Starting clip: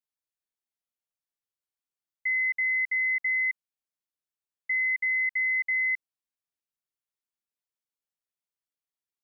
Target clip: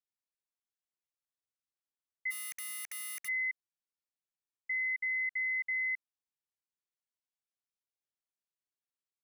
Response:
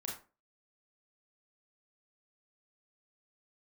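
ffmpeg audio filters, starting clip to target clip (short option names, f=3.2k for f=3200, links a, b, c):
-filter_complex "[0:a]aresample=22050,aresample=44100,asplit=3[a][b][c];[a]afade=t=out:st=2.3:d=0.02[d];[b]aeval=exprs='(mod(26.6*val(0)+1,2)-1)/26.6':c=same,afade=t=in:st=2.3:d=0.02,afade=t=out:st=3.27:d=0.02[e];[c]afade=t=in:st=3.27:d=0.02[f];[d][e][f]amix=inputs=3:normalize=0,volume=-7dB"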